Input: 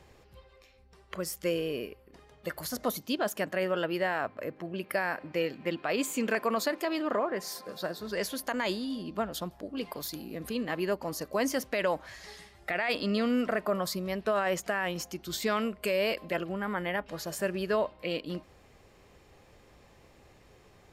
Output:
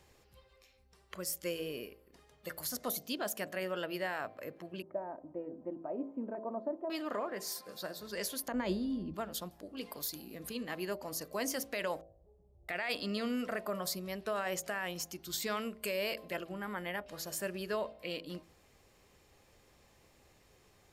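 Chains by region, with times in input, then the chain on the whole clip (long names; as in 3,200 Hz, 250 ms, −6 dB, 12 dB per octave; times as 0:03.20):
0:04.82–0:06.90: Chebyshev low-pass filter 800 Hz, order 3 + comb filter 3.2 ms, depth 45%
0:08.48–0:09.14: spectral tilt −4 dB per octave + multiband upward and downward expander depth 40%
0:12.01–0:12.69: converter with a step at zero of −48 dBFS + inverse Chebyshev low-pass filter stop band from 2,200 Hz, stop band 70 dB + parametric band 260 Hz −14.5 dB 1.3 octaves
whole clip: high-shelf EQ 4,400 Hz +9.5 dB; hum removal 55.22 Hz, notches 14; level −7.5 dB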